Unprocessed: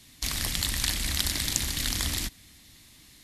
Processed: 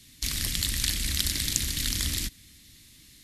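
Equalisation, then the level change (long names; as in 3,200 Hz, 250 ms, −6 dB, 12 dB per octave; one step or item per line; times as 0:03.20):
parametric band 830 Hz −13 dB 1.3 octaves
+1.0 dB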